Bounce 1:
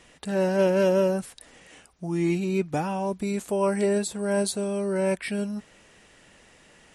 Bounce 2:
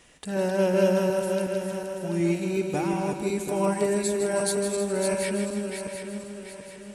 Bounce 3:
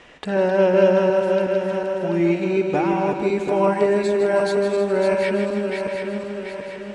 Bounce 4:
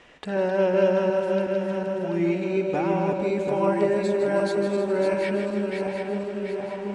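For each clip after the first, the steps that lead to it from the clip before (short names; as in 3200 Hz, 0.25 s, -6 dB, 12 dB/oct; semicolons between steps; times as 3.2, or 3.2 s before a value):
regenerating reverse delay 0.367 s, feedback 64%, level -5.5 dB; high shelf 7400 Hz +7.5 dB; split-band echo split 360 Hz, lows 81 ms, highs 0.159 s, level -8.5 dB; gain -2.5 dB
tone controls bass -8 dB, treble -8 dB; in parallel at +1 dB: compressor, threshold -35 dBFS, peak gain reduction 16 dB; on the sum: air absorption 120 m; gain +6 dB
delay with a stepping band-pass 0.769 s, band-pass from 160 Hz, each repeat 0.7 oct, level -2 dB; gain -5 dB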